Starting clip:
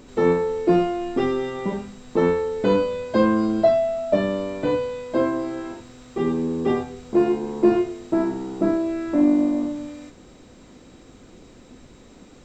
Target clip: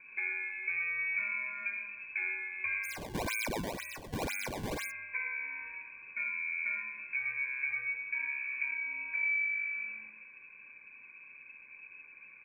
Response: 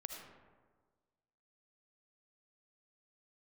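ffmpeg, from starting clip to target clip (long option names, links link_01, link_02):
-filter_complex "[0:a]equalizer=frequency=350:width_type=o:width=0.77:gain=-2.5,aecho=1:1:0.8:0.92,acompressor=threshold=-23dB:ratio=5,aecho=1:1:314:0.188[link_01];[1:a]atrim=start_sample=2205,atrim=end_sample=6174[link_02];[link_01][link_02]afir=irnorm=-1:irlink=0,lowpass=frequency=2200:width_type=q:width=0.5098,lowpass=frequency=2200:width_type=q:width=0.6013,lowpass=frequency=2200:width_type=q:width=0.9,lowpass=frequency=2200:width_type=q:width=2.563,afreqshift=-2600,asplit=3[link_03][link_04][link_05];[link_03]afade=type=out:start_time=2.83:duration=0.02[link_06];[link_04]acrusher=samples=20:mix=1:aa=0.000001:lfo=1:lforange=32:lforate=2,afade=type=in:start_time=2.83:duration=0.02,afade=type=out:start_time=4.9:duration=0.02[link_07];[link_05]afade=type=in:start_time=4.9:duration=0.02[link_08];[link_06][link_07][link_08]amix=inputs=3:normalize=0,asuperstop=centerf=1300:order=12:qfactor=5.4,volume=-5.5dB"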